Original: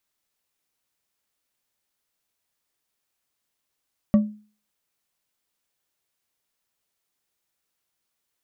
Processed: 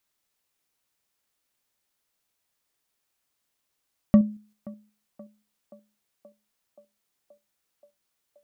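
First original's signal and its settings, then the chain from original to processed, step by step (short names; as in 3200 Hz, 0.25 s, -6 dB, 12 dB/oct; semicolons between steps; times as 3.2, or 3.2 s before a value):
glass hit bar, lowest mode 211 Hz, decay 0.39 s, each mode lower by 11 dB, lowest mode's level -10 dB
in parallel at -3 dB: level quantiser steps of 24 dB; on the sum: narrowing echo 0.527 s, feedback 82%, band-pass 590 Hz, level -18 dB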